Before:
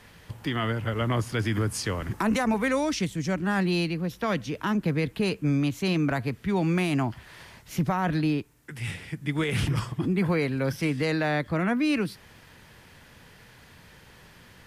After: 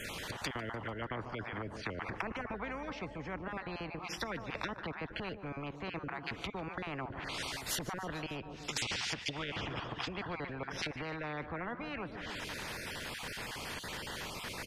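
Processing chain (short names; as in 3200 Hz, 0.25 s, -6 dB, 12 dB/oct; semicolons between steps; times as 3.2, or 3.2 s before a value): random spectral dropouts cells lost 23%; treble ducked by the level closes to 670 Hz, closed at -26 dBFS; 8.08–10.33 band shelf 4300 Hz +11 dB; feedback echo 0.148 s, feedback 60%, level -22.5 dB; spectral compressor 4:1; gain -2 dB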